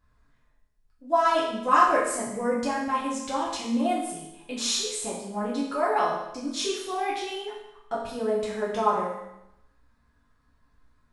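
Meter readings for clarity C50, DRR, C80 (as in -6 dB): 2.5 dB, -7.5 dB, 5.5 dB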